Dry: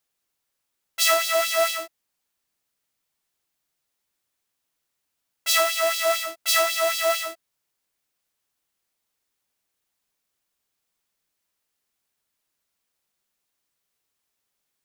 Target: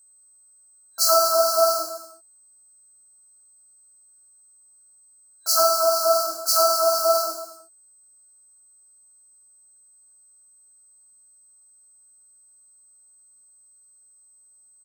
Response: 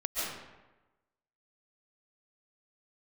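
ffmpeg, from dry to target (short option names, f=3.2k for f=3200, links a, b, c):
-af "aecho=1:1:50|107.5|173.6|249.7|337.1:0.631|0.398|0.251|0.158|0.1,aeval=exprs='val(0)+0.00178*sin(2*PI*8200*n/s)':c=same,afftfilt=real='re*(1-between(b*sr/4096,1600,4000))':imag='im*(1-between(b*sr/4096,1600,4000))':win_size=4096:overlap=0.75,volume=2dB"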